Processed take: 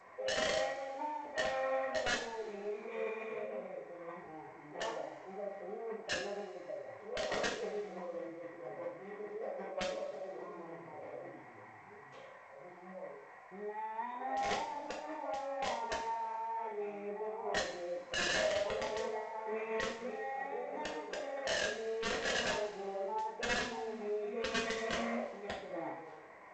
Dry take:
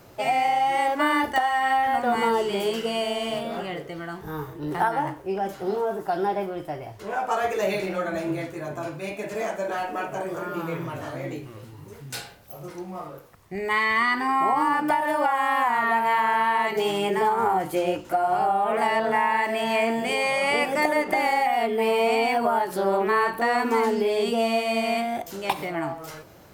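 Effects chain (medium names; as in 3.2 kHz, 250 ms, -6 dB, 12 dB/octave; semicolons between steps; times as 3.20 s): bass shelf 410 Hz +10 dB; compression 1.5:1, threshold -28 dBFS, peak gain reduction 5.5 dB; band noise 930–2600 Hz -39 dBFS; vowel filter a; integer overflow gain 23.5 dB; formant shift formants -4 st; two-slope reverb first 0.46 s, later 1.9 s, from -18 dB, DRR -2 dB; trim -8.5 dB; G.722 64 kbps 16 kHz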